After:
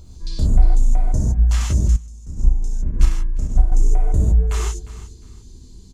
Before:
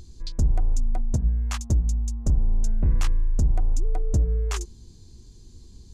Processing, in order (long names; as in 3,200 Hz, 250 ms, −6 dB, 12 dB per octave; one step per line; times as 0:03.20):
auto-filter notch sine 5.6 Hz 570–5,800 Hz
on a send: repeating echo 355 ms, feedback 25%, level −16.5 dB
on the sum: reverb whose tail is shaped and stops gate 180 ms flat, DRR −6 dB
0:01.96–0:03.72: expander for the loud parts 2.5 to 1, over −16 dBFS
level −1 dB